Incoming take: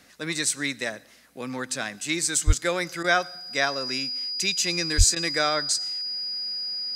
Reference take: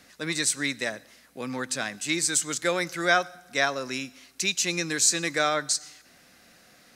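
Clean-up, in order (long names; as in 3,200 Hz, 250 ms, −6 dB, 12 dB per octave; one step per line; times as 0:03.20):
notch filter 4,900 Hz, Q 30
0:02.46–0:02.58: high-pass filter 140 Hz 24 dB per octave
0:04.97–0:05.09: high-pass filter 140 Hz 24 dB per octave
repair the gap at 0:03.03/0:05.15, 11 ms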